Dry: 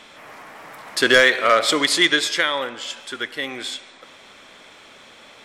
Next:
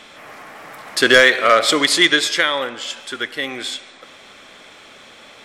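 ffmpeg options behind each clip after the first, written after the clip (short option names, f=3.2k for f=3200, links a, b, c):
-af "bandreject=f=950:w=17,volume=3dB"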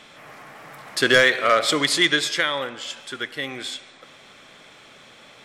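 -af "equalizer=f=140:w=2.8:g=9,volume=-5dB"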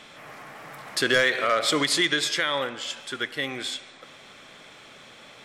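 -af "alimiter=limit=-12.5dB:level=0:latency=1:release=110"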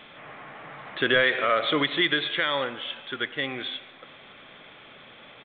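-af "aresample=8000,aresample=44100"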